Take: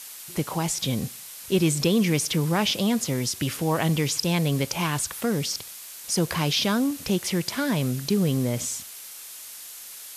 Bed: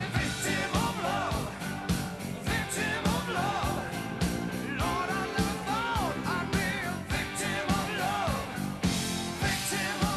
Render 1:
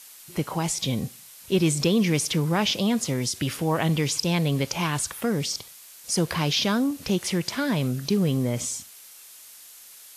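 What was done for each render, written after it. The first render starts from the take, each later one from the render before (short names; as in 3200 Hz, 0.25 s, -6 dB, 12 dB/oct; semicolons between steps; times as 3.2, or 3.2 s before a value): noise print and reduce 6 dB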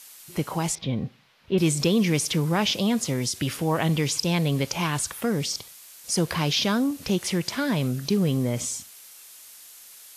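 0.75–1.58 air absorption 320 m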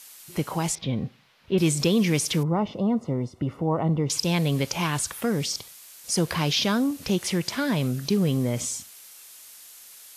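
2.43–4.1 polynomial smoothing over 65 samples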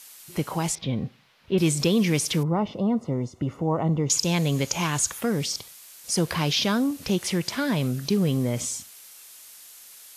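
3.12–5.19 bell 6700 Hz +10.5 dB 0.24 oct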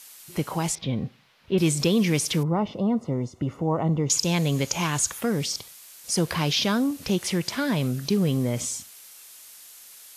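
nothing audible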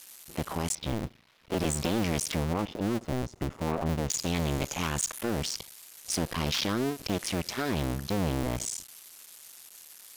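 cycle switcher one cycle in 2, muted; soft clip -21 dBFS, distortion -14 dB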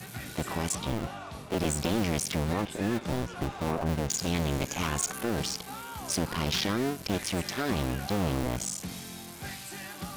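add bed -11 dB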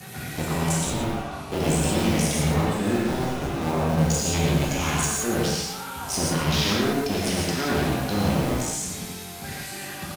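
outdoor echo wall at 20 m, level -8 dB; non-linear reverb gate 0.2 s flat, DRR -4.5 dB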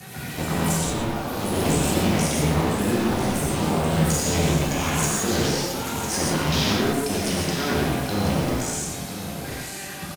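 echoes that change speed 0.101 s, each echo +4 st, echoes 3, each echo -6 dB; echo 0.996 s -11 dB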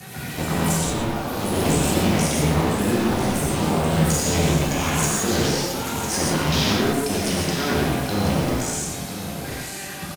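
gain +1.5 dB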